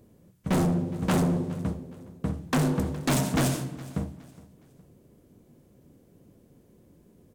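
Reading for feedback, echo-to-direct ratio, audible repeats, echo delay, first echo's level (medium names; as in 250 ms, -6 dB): 33%, -19.5 dB, 2, 415 ms, -20.0 dB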